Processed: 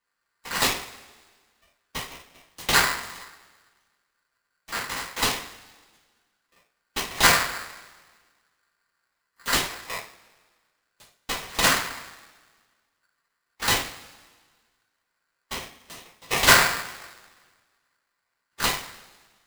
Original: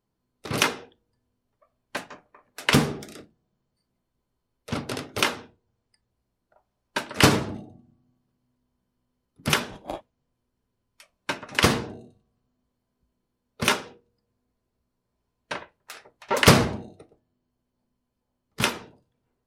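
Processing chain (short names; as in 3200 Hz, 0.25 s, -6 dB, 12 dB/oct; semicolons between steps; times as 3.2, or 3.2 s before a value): cycle switcher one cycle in 2, inverted; two-slope reverb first 0.34 s, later 1.6 s, from -20 dB, DRR -8.5 dB; polarity switched at an audio rate 1500 Hz; gain -8.5 dB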